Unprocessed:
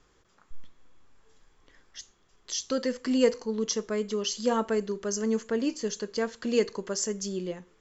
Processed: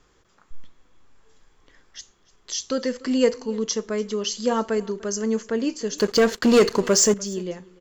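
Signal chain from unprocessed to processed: 5.98–7.14 sample leveller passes 3; on a send: echo 0.295 s -22.5 dB; on the sum: gain +3.5 dB

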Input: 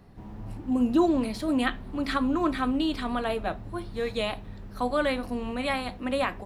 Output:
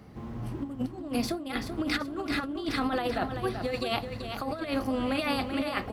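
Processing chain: HPF 57 Hz; notch 830 Hz, Q 12; negative-ratio compressor -30 dBFS, ratio -0.5; on a send: feedback echo 0.418 s, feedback 35%, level -8 dB; on the sum: speed mistake 44.1 kHz file played as 48 kHz

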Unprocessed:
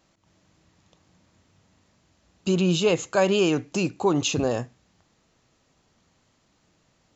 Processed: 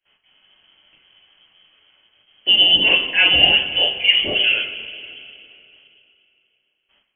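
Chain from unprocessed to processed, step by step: gate with hold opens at -54 dBFS; two-slope reverb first 0.3 s, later 2.9 s, from -18 dB, DRR -6 dB; inverted band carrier 3200 Hz

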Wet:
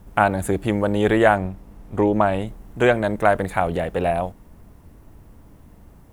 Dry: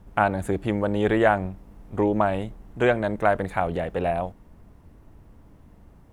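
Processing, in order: high shelf 7200 Hz +10.5 dB, from 1.37 s +4 dB, from 2.47 s +10 dB; gain +3.5 dB

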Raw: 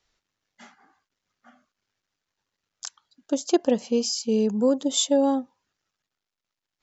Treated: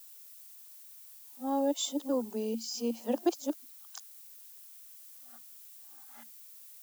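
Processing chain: whole clip reversed; added noise violet -41 dBFS; rippled Chebyshev high-pass 220 Hz, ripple 6 dB; gain -5 dB

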